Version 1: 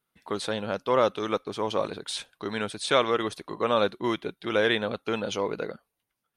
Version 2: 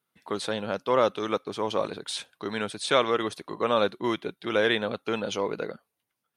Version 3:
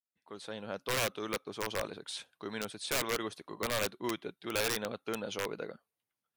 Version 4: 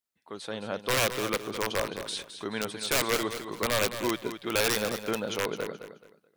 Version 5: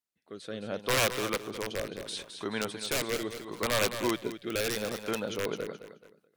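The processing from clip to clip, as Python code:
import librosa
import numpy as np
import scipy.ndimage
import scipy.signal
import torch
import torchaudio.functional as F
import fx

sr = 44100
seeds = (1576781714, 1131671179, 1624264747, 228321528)

y1 = scipy.signal.sosfilt(scipy.signal.butter(2, 95.0, 'highpass', fs=sr, output='sos'), x)
y2 = fx.fade_in_head(y1, sr, length_s=0.85)
y2 = (np.mod(10.0 ** (16.5 / 20.0) * y2 + 1.0, 2.0) - 1.0) / 10.0 ** (16.5 / 20.0)
y2 = y2 * 10.0 ** (-8.0 / 20.0)
y3 = fx.echo_feedback(y2, sr, ms=214, feedback_pct=27, wet_db=-10.0)
y3 = y3 * 10.0 ** (6.0 / 20.0)
y4 = fx.rotary_switch(y3, sr, hz=0.7, then_hz=6.7, switch_at_s=4.98)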